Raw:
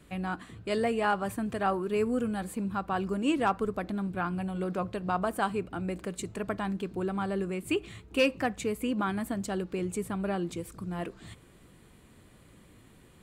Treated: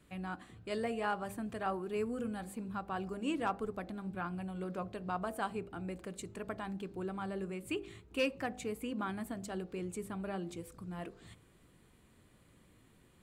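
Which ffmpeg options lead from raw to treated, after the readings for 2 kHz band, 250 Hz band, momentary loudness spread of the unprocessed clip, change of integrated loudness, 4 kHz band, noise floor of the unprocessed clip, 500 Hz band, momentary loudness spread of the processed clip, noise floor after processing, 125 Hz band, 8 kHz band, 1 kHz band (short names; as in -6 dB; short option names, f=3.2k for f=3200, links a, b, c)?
-7.5 dB, -8.0 dB, 9 LU, -8.0 dB, -7.5 dB, -57 dBFS, -8.0 dB, 9 LU, -65 dBFS, -8.0 dB, -7.5 dB, -7.5 dB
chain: -af "bandreject=f=50.02:t=h:w=4,bandreject=f=100.04:t=h:w=4,bandreject=f=150.06:t=h:w=4,bandreject=f=200.08:t=h:w=4,bandreject=f=250.1:t=h:w=4,bandreject=f=300.12:t=h:w=4,bandreject=f=350.14:t=h:w=4,bandreject=f=400.16:t=h:w=4,bandreject=f=450.18:t=h:w=4,bandreject=f=500.2:t=h:w=4,bandreject=f=550.22:t=h:w=4,bandreject=f=600.24:t=h:w=4,bandreject=f=650.26:t=h:w=4,bandreject=f=700.28:t=h:w=4,bandreject=f=750.3:t=h:w=4,bandreject=f=800.32:t=h:w=4,bandreject=f=850.34:t=h:w=4,volume=-7.5dB"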